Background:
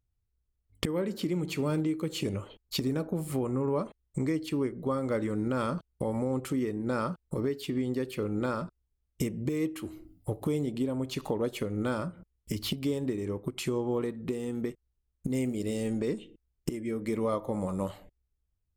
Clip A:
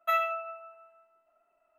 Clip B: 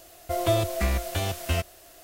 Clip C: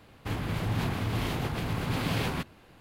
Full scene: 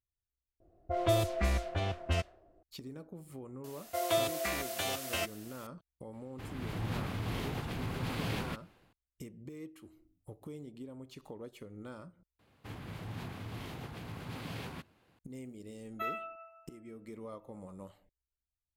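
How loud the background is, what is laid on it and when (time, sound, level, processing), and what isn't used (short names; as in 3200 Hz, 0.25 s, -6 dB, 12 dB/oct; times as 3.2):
background -16 dB
0.6 replace with B -5 dB + low-pass opened by the level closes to 310 Hz, open at -19 dBFS
3.64 add B -2.5 dB + HPF 710 Hz 6 dB/oct
6.13 add C -14 dB + AGC gain up to 7.5 dB
12.39 replace with C -12.5 dB + HPF 57 Hz
15.92 add A -10.5 dB + spectral gate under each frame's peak -45 dB strong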